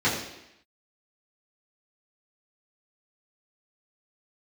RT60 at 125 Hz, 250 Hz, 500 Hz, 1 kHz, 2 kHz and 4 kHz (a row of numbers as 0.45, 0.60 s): 0.70, 0.85, 0.80, 0.85, 0.90, 0.85 s